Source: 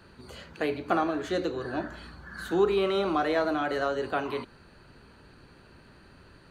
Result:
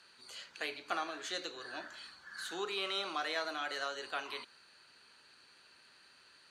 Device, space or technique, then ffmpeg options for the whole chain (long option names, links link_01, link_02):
piezo pickup straight into a mixer: -af "lowpass=6500,aderivative,volume=7.5dB"